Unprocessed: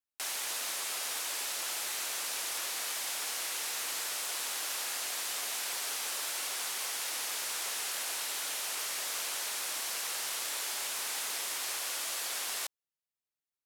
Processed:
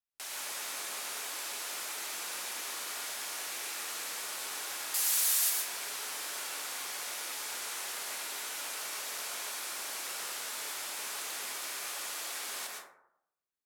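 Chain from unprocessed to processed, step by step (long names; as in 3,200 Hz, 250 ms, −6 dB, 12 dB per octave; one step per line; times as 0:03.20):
0:04.94–0:05.50: RIAA equalisation recording
dense smooth reverb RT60 0.76 s, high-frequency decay 0.35×, pre-delay 100 ms, DRR −2 dB
level −5.5 dB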